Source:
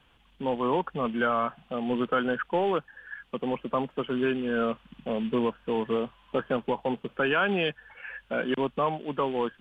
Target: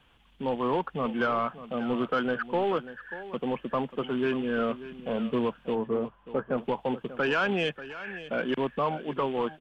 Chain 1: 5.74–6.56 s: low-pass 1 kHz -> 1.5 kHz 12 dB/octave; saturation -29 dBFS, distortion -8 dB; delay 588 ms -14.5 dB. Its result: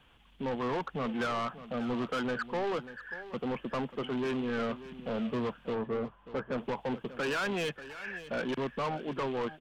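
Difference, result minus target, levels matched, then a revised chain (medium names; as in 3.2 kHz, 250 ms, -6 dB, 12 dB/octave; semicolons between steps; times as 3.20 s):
saturation: distortion +13 dB
5.74–6.56 s: low-pass 1 kHz -> 1.5 kHz 12 dB/octave; saturation -17.5 dBFS, distortion -21 dB; delay 588 ms -14.5 dB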